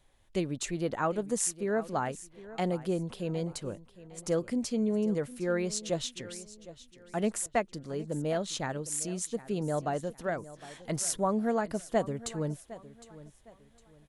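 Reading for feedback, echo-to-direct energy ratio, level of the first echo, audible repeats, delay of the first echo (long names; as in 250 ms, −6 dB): 32%, −16.5 dB, −17.0 dB, 2, 759 ms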